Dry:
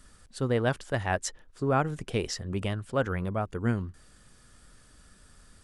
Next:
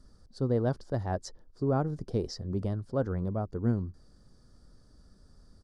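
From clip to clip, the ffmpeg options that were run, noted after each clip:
-af "firequalizer=gain_entry='entry(320,0);entry(2600,-25);entry(4700,-3);entry(7600,-17)':delay=0.05:min_phase=1"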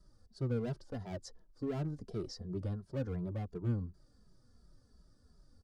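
-filter_complex "[0:a]acrossover=split=380|3300[s0][s1][s2];[s1]asoftclip=type=hard:threshold=0.0141[s3];[s0][s3][s2]amix=inputs=3:normalize=0,asplit=2[s4][s5];[s5]adelay=2.6,afreqshift=-2.8[s6];[s4][s6]amix=inputs=2:normalize=1,volume=0.668"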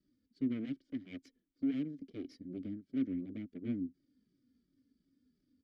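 -filter_complex "[0:a]aeval=exprs='0.0708*(cos(1*acos(clip(val(0)/0.0708,-1,1)))-cos(1*PI/2))+0.00794*(cos(3*acos(clip(val(0)/0.0708,-1,1)))-cos(3*PI/2))+0.0158*(cos(6*acos(clip(val(0)/0.0708,-1,1)))-cos(6*PI/2))':c=same,asplit=3[s0][s1][s2];[s0]bandpass=f=270:t=q:w=8,volume=1[s3];[s1]bandpass=f=2290:t=q:w=8,volume=0.501[s4];[s2]bandpass=f=3010:t=q:w=8,volume=0.355[s5];[s3][s4][s5]amix=inputs=3:normalize=0,volume=3.16"

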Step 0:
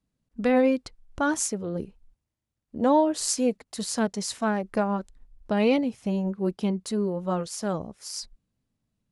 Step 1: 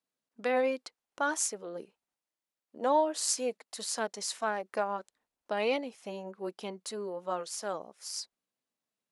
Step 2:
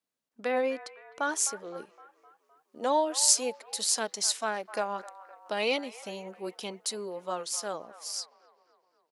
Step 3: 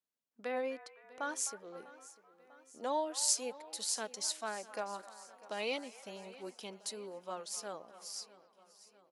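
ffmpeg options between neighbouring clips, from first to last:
-af "highpass=510,volume=0.708"
-filter_complex "[0:a]acrossover=split=680|2800[s0][s1][s2];[s1]asplit=7[s3][s4][s5][s6][s7][s8][s9];[s4]adelay=257,afreqshift=-32,volume=0.266[s10];[s5]adelay=514,afreqshift=-64,volume=0.15[s11];[s6]adelay=771,afreqshift=-96,volume=0.0832[s12];[s7]adelay=1028,afreqshift=-128,volume=0.0468[s13];[s8]adelay=1285,afreqshift=-160,volume=0.0263[s14];[s9]adelay=1542,afreqshift=-192,volume=0.0146[s15];[s3][s10][s11][s12][s13][s14][s15]amix=inputs=7:normalize=0[s16];[s2]dynaudnorm=f=210:g=17:m=2.99[s17];[s0][s16][s17]amix=inputs=3:normalize=0"
-af "aecho=1:1:647|1294|1941|2588|3235:0.112|0.064|0.0365|0.0208|0.0118,volume=0.376"

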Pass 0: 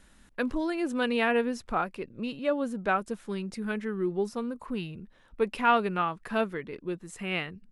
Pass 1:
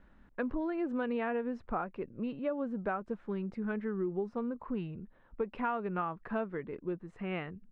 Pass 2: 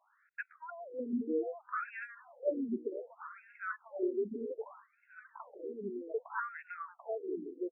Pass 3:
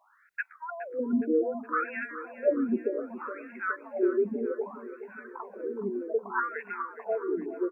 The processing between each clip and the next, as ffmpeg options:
-af "lowpass=1500,acompressor=threshold=0.0398:ratio=12,volume=0.841"
-af "aecho=1:1:740|1480|2220|2960|3700:0.708|0.255|0.0917|0.033|0.0119,afftfilt=real='re*between(b*sr/1024,300*pow(2000/300,0.5+0.5*sin(2*PI*0.64*pts/sr))/1.41,300*pow(2000/300,0.5+0.5*sin(2*PI*0.64*pts/sr))*1.41)':imag='im*between(b*sr/1024,300*pow(2000/300,0.5+0.5*sin(2*PI*0.64*pts/sr))/1.41,300*pow(2000/300,0.5+0.5*sin(2*PI*0.64*pts/sr))*1.41)':win_size=1024:overlap=0.75,volume=1.19"
-af "aecho=1:1:417|834|1251|1668|2085:0.211|0.112|0.0594|0.0315|0.0167,volume=2.51"

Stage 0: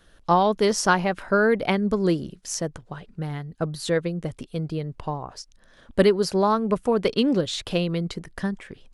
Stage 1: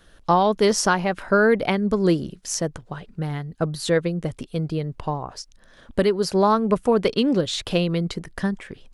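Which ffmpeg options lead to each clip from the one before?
-af "alimiter=limit=0.299:level=0:latency=1:release=428,volume=1.41"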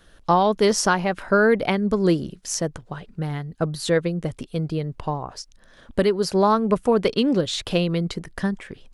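-af anull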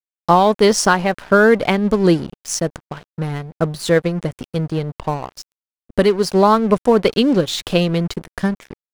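-af "aeval=exprs='sgn(val(0))*max(abs(val(0))-0.0133,0)':c=same,volume=2"

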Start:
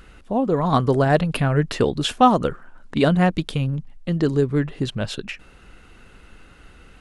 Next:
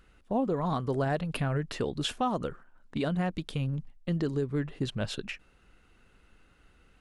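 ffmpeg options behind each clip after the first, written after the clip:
-af "agate=range=0.398:threshold=0.0178:ratio=16:detection=peak,alimiter=limit=0.2:level=0:latency=1:release=332,volume=0.501"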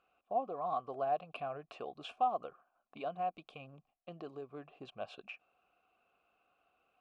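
-filter_complex "[0:a]asplit=3[s0][s1][s2];[s0]bandpass=f=730:t=q:w=8,volume=1[s3];[s1]bandpass=f=1090:t=q:w=8,volume=0.501[s4];[s2]bandpass=f=2440:t=q:w=8,volume=0.355[s5];[s3][s4][s5]amix=inputs=3:normalize=0,volume=1.41"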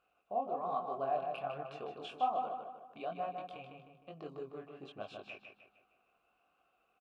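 -filter_complex "[0:a]flanger=delay=19.5:depth=6:speed=1.2,asplit=2[s0][s1];[s1]adelay=154,lowpass=f=4000:p=1,volume=0.562,asplit=2[s2][s3];[s3]adelay=154,lowpass=f=4000:p=1,volume=0.46,asplit=2[s4][s5];[s5]adelay=154,lowpass=f=4000:p=1,volume=0.46,asplit=2[s6][s7];[s7]adelay=154,lowpass=f=4000:p=1,volume=0.46,asplit=2[s8][s9];[s9]adelay=154,lowpass=f=4000:p=1,volume=0.46,asplit=2[s10][s11];[s11]adelay=154,lowpass=f=4000:p=1,volume=0.46[s12];[s2][s4][s6][s8][s10][s12]amix=inputs=6:normalize=0[s13];[s0][s13]amix=inputs=2:normalize=0,volume=1.26"

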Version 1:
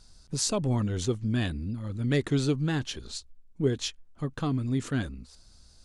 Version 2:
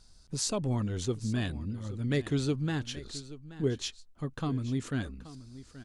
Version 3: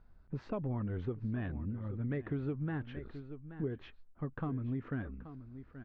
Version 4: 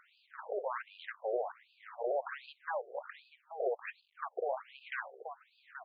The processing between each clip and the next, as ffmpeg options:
-af "aecho=1:1:828:0.158,volume=0.668"
-af "lowpass=f=2000:w=0.5412,lowpass=f=2000:w=1.3066,acompressor=threshold=0.0282:ratio=6,volume=0.841"
-af "aeval=exprs='0.0596*sin(PI/2*3.98*val(0)/0.0596)':c=same,acrusher=bits=9:mix=0:aa=0.000001,afftfilt=real='re*between(b*sr/1024,520*pow(3500/520,0.5+0.5*sin(2*PI*1.3*pts/sr))/1.41,520*pow(3500/520,0.5+0.5*sin(2*PI*1.3*pts/sr))*1.41)':imag='im*between(b*sr/1024,520*pow(3500/520,0.5+0.5*sin(2*PI*1.3*pts/sr))/1.41,520*pow(3500/520,0.5+0.5*sin(2*PI*1.3*pts/sr))*1.41)':win_size=1024:overlap=0.75,volume=1.12"

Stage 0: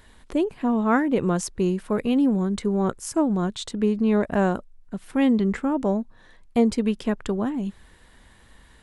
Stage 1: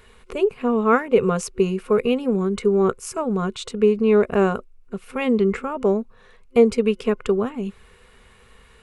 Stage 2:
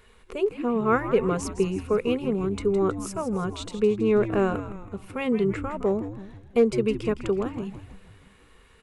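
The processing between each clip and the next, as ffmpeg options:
-af "superequalizer=6b=0.251:7b=2.82:10b=2:12b=2.24"
-filter_complex "[0:a]asoftclip=type=hard:threshold=0.501,asplit=7[s0][s1][s2][s3][s4][s5][s6];[s1]adelay=162,afreqshift=-98,volume=0.282[s7];[s2]adelay=324,afreqshift=-196,volume=0.146[s8];[s3]adelay=486,afreqshift=-294,volume=0.0759[s9];[s4]adelay=648,afreqshift=-392,volume=0.0398[s10];[s5]adelay=810,afreqshift=-490,volume=0.0207[s11];[s6]adelay=972,afreqshift=-588,volume=0.0107[s12];[s0][s7][s8][s9][s10][s11][s12]amix=inputs=7:normalize=0,volume=0.562"

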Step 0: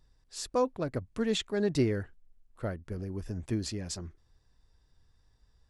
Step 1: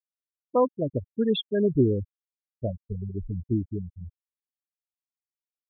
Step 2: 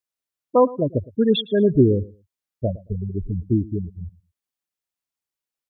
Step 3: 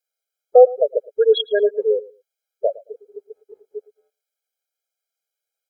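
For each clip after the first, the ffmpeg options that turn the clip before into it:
-af "afftfilt=real='re*gte(hypot(re,im),0.0794)':imag='im*gte(hypot(re,im),0.0794)':win_size=1024:overlap=0.75,volume=2"
-af "aecho=1:1:111|222:0.0944|0.017,volume=2"
-af "afftfilt=real='re*eq(mod(floor(b*sr/1024/420),2),1)':imag='im*eq(mod(floor(b*sr/1024/420),2),1)':win_size=1024:overlap=0.75,volume=2.24"

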